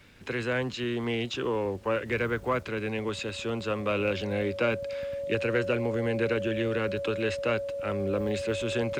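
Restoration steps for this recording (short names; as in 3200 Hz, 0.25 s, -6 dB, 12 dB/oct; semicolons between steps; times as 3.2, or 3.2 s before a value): de-click; notch 560 Hz, Q 30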